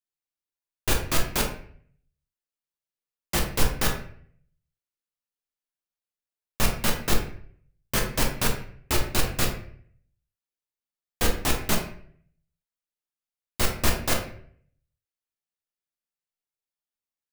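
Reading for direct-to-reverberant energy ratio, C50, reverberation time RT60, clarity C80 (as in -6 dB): 1.0 dB, 6.5 dB, 0.55 s, 10.0 dB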